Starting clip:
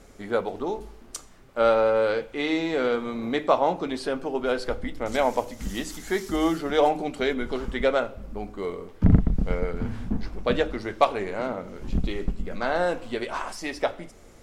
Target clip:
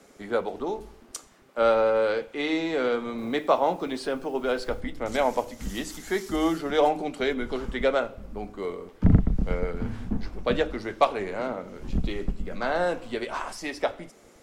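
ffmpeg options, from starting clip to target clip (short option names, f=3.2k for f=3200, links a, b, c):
-filter_complex "[0:a]acrossover=split=170|530|3000[a][b][c][d];[a]aeval=exprs='sgn(val(0))*max(abs(val(0))-0.00299,0)':c=same[e];[e][b][c][d]amix=inputs=4:normalize=0,asettb=1/sr,asplit=3[f][g][h];[f]atrim=end=3.184[i];[g]atrim=start=3.18:end=4.81,asetpts=PTS-STARTPTS,afade=t=in:d=0.004:c=qsin,afade=t=out:st=1.626:d=0.004:c=qsin,acrusher=bits=8:mix=0:aa=0.5[j];[h]atrim=start=4.806[k];[i][j]acrossfade=d=0.004:c1=hsin:c2=qsin[l];[l][k]acrossfade=d=0.004:c1=qsin:c2=hsin,volume=-1dB"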